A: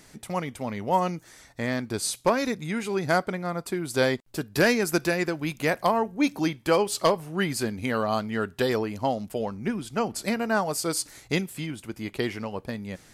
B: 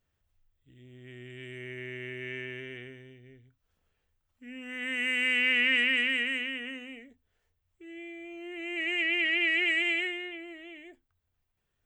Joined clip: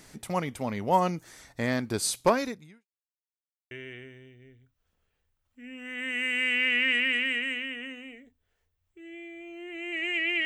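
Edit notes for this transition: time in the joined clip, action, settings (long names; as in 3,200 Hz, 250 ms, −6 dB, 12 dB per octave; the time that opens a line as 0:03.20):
A
0:02.31–0:02.86: fade out quadratic
0:02.86–0:03.71: silence
0:03.71: continue with B from 0:02.55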